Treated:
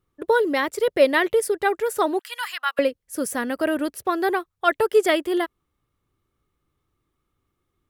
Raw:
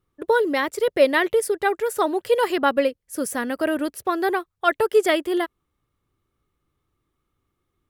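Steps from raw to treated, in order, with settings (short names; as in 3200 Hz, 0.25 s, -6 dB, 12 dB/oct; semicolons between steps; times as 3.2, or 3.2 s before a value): 2.19–2.79 HPF 1200 Hz 24 dB/oct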